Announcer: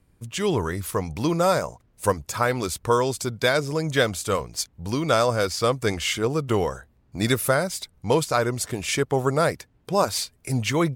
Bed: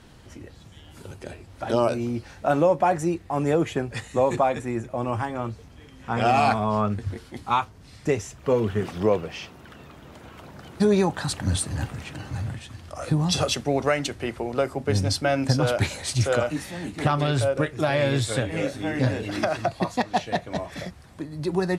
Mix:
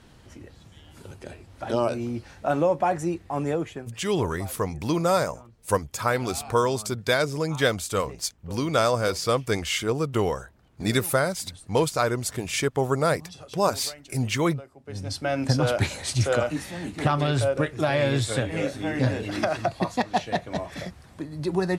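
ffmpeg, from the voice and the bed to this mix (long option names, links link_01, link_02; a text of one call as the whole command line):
ffmpeg -i stem1.wav -i stem2.wav -filter_complex "[0:a]adelay=3650,volume=-1.5dB[link_01];[1:a]volume=18dB,afade=type=out:start_time=3.39:duration=0.58:silence=0.11885,afade=type=in:start_time=14.83:duration=0.71:silence=0.0944061[link_02];[link_01][link_02]amix=inputs=2:normalize=0" out.wav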